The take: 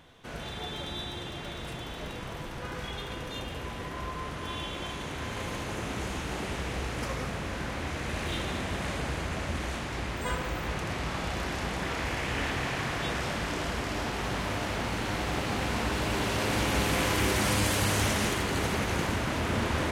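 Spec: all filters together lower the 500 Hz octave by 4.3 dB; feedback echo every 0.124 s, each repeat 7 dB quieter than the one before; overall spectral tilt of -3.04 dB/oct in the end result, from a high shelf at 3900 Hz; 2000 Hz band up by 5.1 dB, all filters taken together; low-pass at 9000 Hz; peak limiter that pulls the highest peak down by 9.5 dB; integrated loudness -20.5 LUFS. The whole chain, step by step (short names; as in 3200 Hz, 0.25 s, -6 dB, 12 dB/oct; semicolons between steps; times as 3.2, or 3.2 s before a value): LPF 9000 Hz; bell 500 Hz -6 dB; bell 2000 Hz +5 dB; high shelf 3900 Hz +6.5 dB; limiter -21.5 dBFS; feedback echo 0.124 s, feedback 45%, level -7 dB; gain +10 dB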